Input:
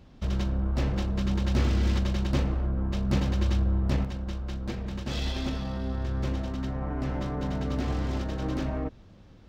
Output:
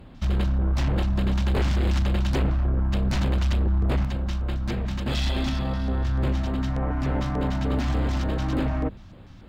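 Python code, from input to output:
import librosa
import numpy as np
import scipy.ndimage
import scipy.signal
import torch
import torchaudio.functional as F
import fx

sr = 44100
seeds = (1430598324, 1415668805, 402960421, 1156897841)

y = fx.hum_notches(x, sr, base_hz=50, count=4)
y = fx.fold_sine(y, sr, drive_db=8, ceiling_db=-14.5)
y = fx.filter_lfo_notch(y, sr, shape='square', hz=3.4, low_hz=440.0, high_hz=5800.0, q=0.89)
y = y * librosa.db_to_amplitude(-4.0)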